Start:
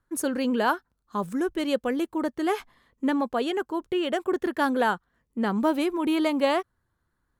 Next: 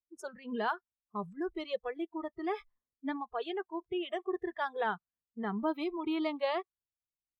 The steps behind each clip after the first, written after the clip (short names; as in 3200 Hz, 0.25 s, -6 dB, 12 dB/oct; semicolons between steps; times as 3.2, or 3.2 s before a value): spectral noise reduction 24 dB; low-pass opened by the level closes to 310 Hz, open at -25.5 dBFS; gain -8.5 dB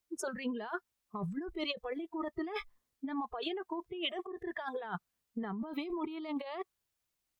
negative-ratio compressor -42 dBFS, ratio -1; gain +4 dB